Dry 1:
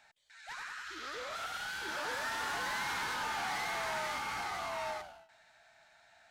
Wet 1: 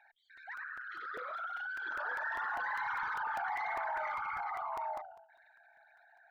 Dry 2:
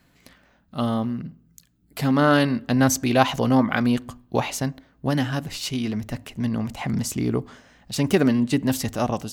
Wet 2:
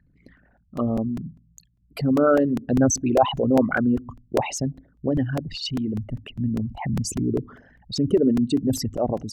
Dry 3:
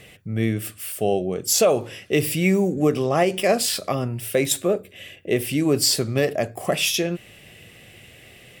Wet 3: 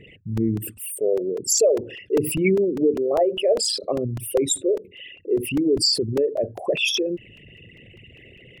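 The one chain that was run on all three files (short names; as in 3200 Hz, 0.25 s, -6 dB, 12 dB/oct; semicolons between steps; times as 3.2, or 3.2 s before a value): formant sharpening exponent 3; crackling interface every 0.20 s, samples 128, repeat, from 0.37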